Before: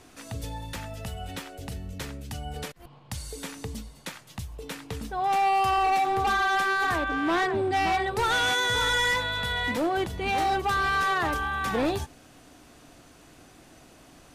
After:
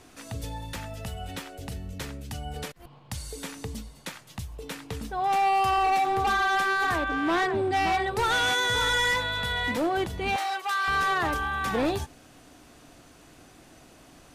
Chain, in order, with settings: 10.36–10.88 s: high-pass 940 Hz 12 dB/octave

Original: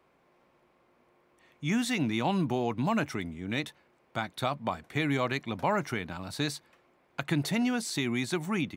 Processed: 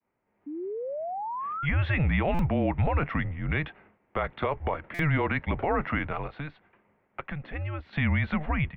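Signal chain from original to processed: 6.26–7.93 s: compression 2.5:1, threshold -46 dBFS, peak gain reduction 14.5 dB; expander -58 dBFS; 0.46–1.66 s: painted sound rise 430–1600 Hz -42 dBFS; mistuned SSB -150 Hz 200–2800 Hz; peak limiter -26.5 dBFS, peak gain reduction 10.5 dB; level rider gain up to 9 dB; buffer glitch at 2.34/4.94 s, samples 256, times 8

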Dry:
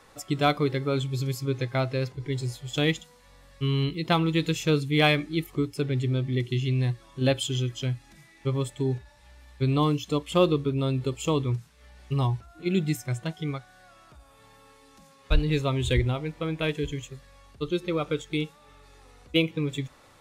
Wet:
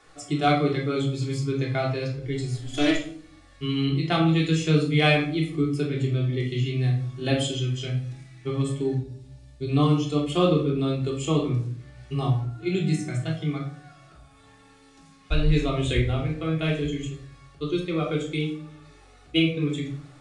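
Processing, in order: 2.54–2.95 s: comb filter that takes the minimum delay 3 ms; 8.94–9.69 s: peaking EQ 1.6 kHz -14.5 dB 1.7 oct; reverberation RT60 0.55 s, pre-delay 3 ms, DRR -2.5 dB; resampled via 22.05 kHz; bass shelf 190 Hz -3.5 dB; band-stop 1 kHz, Q 6.8; trim -3 dB

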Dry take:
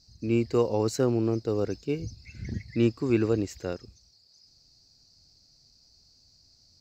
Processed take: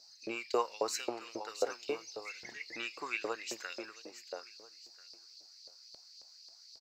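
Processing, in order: in parallel at +2 dB: compression, threshold -34 dBFS, peak gain reduction 15.5 dB; on the sum: feedback delay 669 ms, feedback 21%, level -10 dB; flange 1.2 Hz, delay 8.3 ms, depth 1.1 ms, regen +85%; LFO high-pass saw up 3.7 Hz 570–4000 Hz

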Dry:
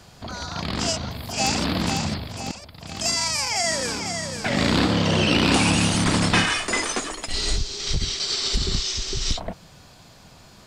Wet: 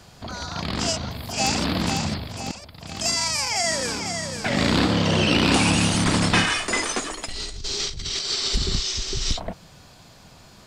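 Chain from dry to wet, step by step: 7.29–8.25 s: compressor with a negative ratio -30 dBFS, ratio -1

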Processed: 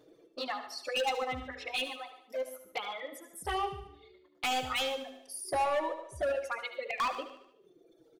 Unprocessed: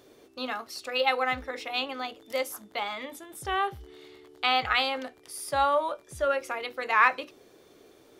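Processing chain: resonances exaggerated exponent 1.5; 5.44–5.93 s: peaking EQ 360 Hz +11 dB 0.59 oct; 6.60–7.00 s: elliptic band-stop 650–2100 Hz; transient shaper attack +2 dB, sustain -2 dB; touch-sensitive flanger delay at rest 6.8 ms, full sweep at -24 dBFS; hard clipper -26.5 dBFS, distortion -9 dB; 1.94–2.65 s: feedback comb 130 Hz, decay 0.26 s, harmonics all, mix 70%; reverb removal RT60 1.4 s; feedback delay 74 ms, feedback 53%, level -12 dB; gated-style reverb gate 150 ms rising, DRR 12 dB

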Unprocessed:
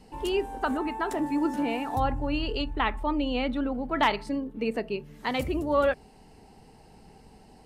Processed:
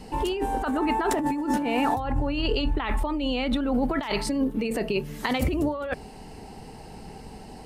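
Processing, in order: 2.84–5.33 s: treble shelf 4.9 kHz +9 dB; compressor with a negative ratio -32 dBFS, ratio -1; trim +6.5 dB

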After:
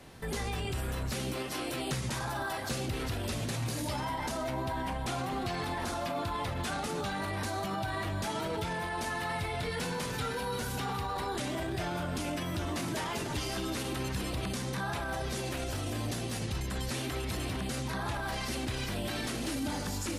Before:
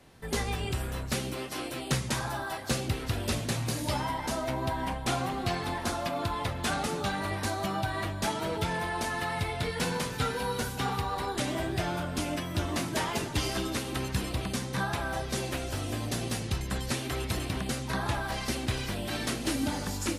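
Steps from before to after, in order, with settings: peak limiter -31.5 dBFS, peak gain reduction 11.5 dB; trim +5 dB

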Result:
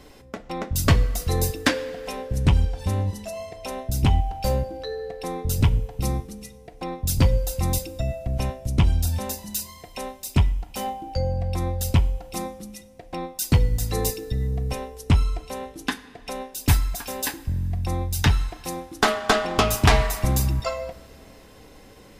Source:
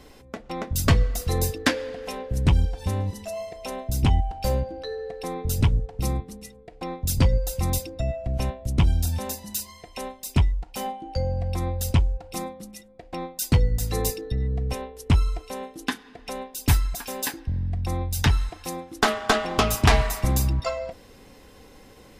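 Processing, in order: two-slope reverb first 0.55 s, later 3.8 s, from -18 dB, DRR 13.5 dB; trim +1 dB

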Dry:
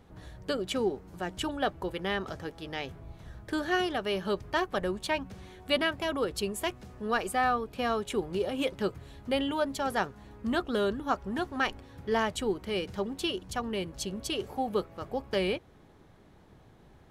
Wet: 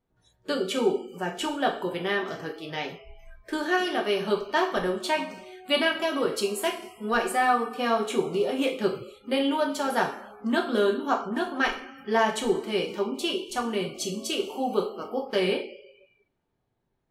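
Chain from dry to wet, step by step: two-slope reverb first 0.43 s, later 2.1 s, from -18 dB, DRR 0 dB; spectral noise reduction 25 dB; trim +1.5 dB

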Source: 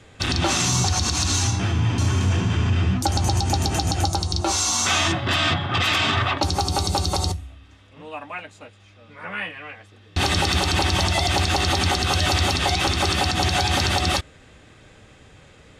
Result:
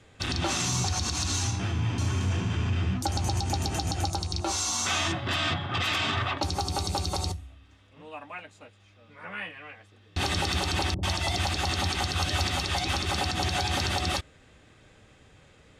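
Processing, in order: rattle on loud lows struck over -20 dBFS, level -29 dBFS; 10.94–13.18 s: bands offset in time lows, highs 90 ms, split 440 Hz; trim -7 dB

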